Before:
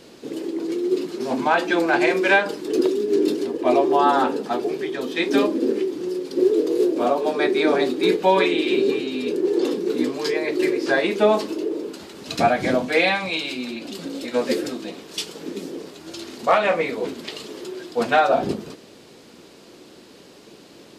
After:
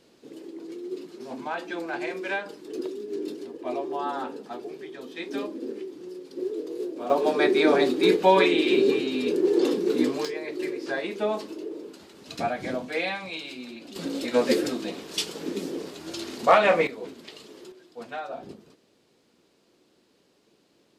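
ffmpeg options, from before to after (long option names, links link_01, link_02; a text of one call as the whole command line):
ffmpeg -i in.wav -af "asetnsamples=nb_out_samples=441:pad=0,asendcmd='7.1 volume volume -1dB;10.25 volume volume -10dB;13.96 volume volume 0dB;16.87 volume volume -11dB;17.72 volume volume -18dB',volume=-13dB" out.wav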